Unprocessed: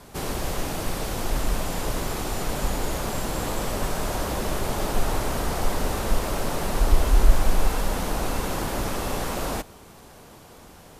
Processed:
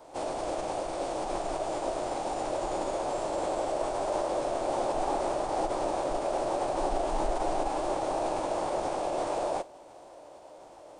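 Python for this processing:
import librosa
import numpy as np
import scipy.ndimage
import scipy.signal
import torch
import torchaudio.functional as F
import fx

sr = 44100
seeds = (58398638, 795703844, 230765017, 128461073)

y = fx.band_shelf(x, sr, hz=670.0, db=14.5, octaves=1.2)
y = fx.pitch_keep_formants(y, sr, semitones=-8.0)
y = fx.low_shelf(y, sr, hz=180.0, db=-8.0)
y = y * 10.0 ** (-8.5 / 20.0)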